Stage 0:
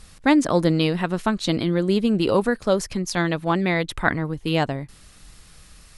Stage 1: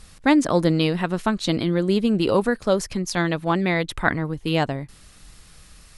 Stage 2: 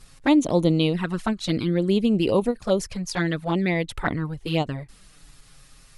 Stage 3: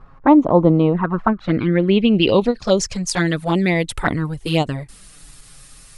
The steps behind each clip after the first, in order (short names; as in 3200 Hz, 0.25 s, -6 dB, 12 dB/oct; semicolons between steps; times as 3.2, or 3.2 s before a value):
nothing audible
envelope flanger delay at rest 8.6 ms, full sweep at -16 dBFS; ending taper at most 400 dB/s
low-pass sweep 1100 Hz -> 9700 Hz, 1.23–3.19; gain +5.5 dB